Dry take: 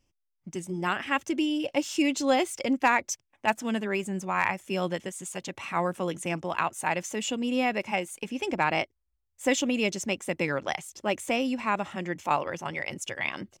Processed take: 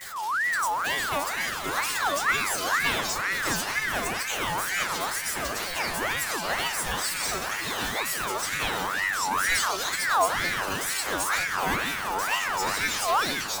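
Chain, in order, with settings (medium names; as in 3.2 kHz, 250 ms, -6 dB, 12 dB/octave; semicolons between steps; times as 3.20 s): jump at every zero crossing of -27 dBFS; 7.24–7.90 s: flutter echo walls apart 7.1 m, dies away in 0.53 s; in parallel at -12 dB: sample-and-hold 10×; on the sum: treble shelf 3.9 kHz +10 dB; repeats whose band climbs or falls 233 ms, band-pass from 470 Hz, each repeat 0.7 oct, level -10.5 dB; on a send at -10 dB: reverberation RT60 0.20 s, pre-delay 3 ms; on the sum: ever faster or slower copies 148 ms, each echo -5 st, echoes 3; inharmonic resonator 92 Hz, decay 0.52 s, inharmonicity 0.002; ring modulator with a swept carrier 1.4 kHz, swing 40%, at 2.1 Hz; trim +5 dB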